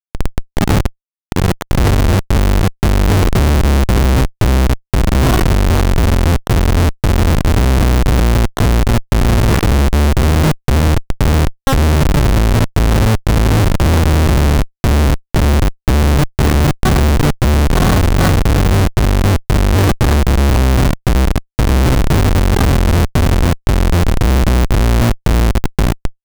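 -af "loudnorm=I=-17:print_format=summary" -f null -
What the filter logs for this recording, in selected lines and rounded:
Input Integrated:    -13.8 LUFS
Input True Peak:      -2.6 dBTP
Input LRA:             1.6 LU
Input Threshold:     -23.8 LUFS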